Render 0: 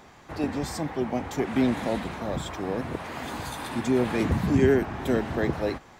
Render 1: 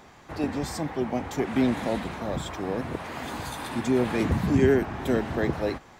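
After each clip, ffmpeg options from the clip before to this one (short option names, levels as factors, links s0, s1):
-af anull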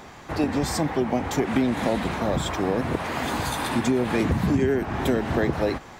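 -af "acompressor=threshold=0.0501:ratio=6,volume=2.37"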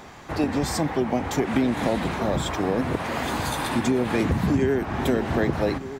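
-filter_complex "[0:a]asplit=2[s0][s1];[s1]adelay=1224,volume=0.224,highshelf=f=4000:g=-27.6[s2];[s0][s2]amix=inputs=2:normalize=0"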